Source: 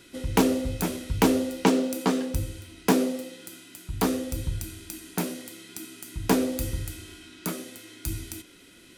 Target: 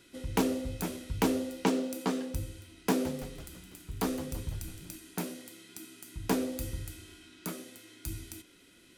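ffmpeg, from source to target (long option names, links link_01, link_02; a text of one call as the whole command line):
ffmpeg -i in.wav -filter_complex "[0:a]asettb=1/sr,asplit=3[link_01][link_02][link_03];[link_01]atrim=end=2.694[link_04];[link_02]atrim=start=2.69:end=4.96,asetpts=PTS-STARTPTS,afade=type=in:duration=0.004:curve=qsin,afade=type=out:start_time=2.266:duration=0.004:curve=qsin,asplit=8[link_05][link_06][link_07][link_08][link_09][link_10][link_11][link_12];[link_06]adelay=166,afreqshift=-110,volume=-13dB[link_13];[link_07]adelay=332,afreqshift=-220,volume=-17.2dB[link_14];[link_08]adelay=498,afreqshift=-330,volume=-21.3dB[link_15];[link_09]adelay=664,afreqshift=-440,volume=-25.5dB[link_16];[link_10]adelay=830,afreqshift=-550,volume=-29.6dB[link_17];[link_11]adelay=996,afreqshift=-660,volume=-33.8dB[link_18];[link_12]adelay=1162,afreqshift=-770,volume=-37.9dB[link_19];[link_05][link_13][link_14][link_15][link_16][link_17][link_18][link_19]amix=inputs=8:normalize=0,atrim=end_sample=100107[link_20];[link_03]atrim=start=4.956[link_21];[link_04][link_20]acrossfade=duration=0.004:curve1=hsin:curve2=qsin[link_22];[link_22][link_21]acrossfade=duration=0.004:curve1=qsin:curve2=hsin,volume=-7dB" out.wav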